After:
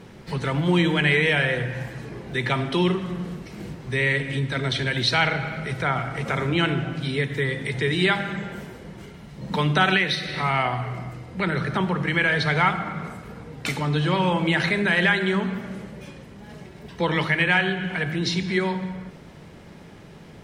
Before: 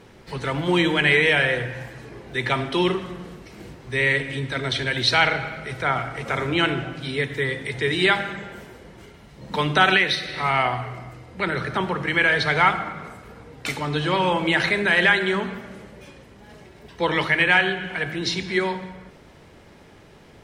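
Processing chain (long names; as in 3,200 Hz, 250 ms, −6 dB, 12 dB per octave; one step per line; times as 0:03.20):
parametric band 170 Hz +8 dB 0.86 octaves
in parallel at +1 dB: downward compressor, threshold −27 dBFS, peak gain reduction 15 dB
on the sum: level −5 dB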